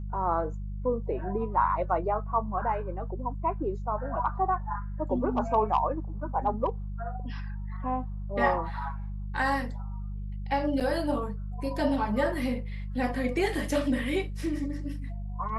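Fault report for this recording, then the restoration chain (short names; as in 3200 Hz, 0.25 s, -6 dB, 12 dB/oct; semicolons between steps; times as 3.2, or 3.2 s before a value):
hum 50 Hz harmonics 4 -35 dBFS
10.8–10.81 gap 7.3 ms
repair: de-hum 50 Hz, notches 4; interpolate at 10.8, 7.3 ms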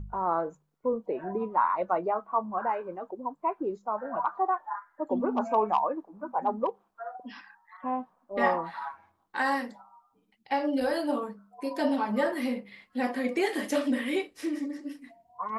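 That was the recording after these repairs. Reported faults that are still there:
none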